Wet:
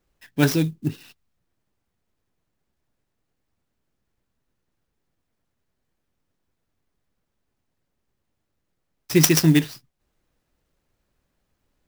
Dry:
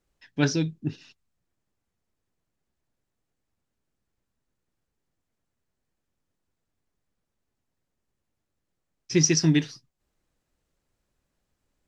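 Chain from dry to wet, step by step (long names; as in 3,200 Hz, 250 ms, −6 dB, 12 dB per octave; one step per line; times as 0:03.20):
converter with an unsteady clock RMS 0.027 ms
level +4.5 dB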